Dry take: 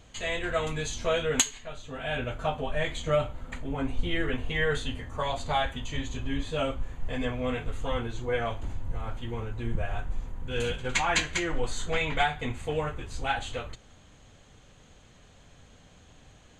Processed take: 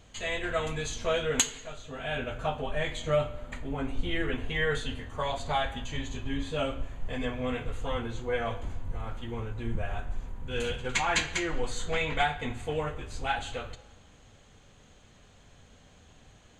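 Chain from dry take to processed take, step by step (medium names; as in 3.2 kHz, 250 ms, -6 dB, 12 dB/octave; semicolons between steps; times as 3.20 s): hum notches 60/120 Hz; on a send: reverberation, pre-delay 3 ms, DRR 12 dB; on the sum: trim -1.5 dB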